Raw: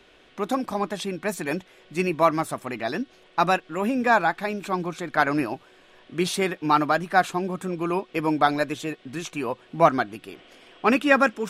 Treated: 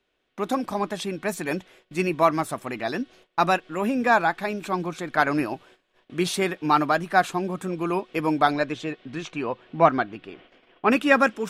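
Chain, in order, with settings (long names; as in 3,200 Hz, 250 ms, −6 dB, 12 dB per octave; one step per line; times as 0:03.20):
0:08.52–0:10.90: low-pass filter 5,600 Hz → 2,700 Hz 12 dB per octave
noise gate −50 dBFS, range −19 dB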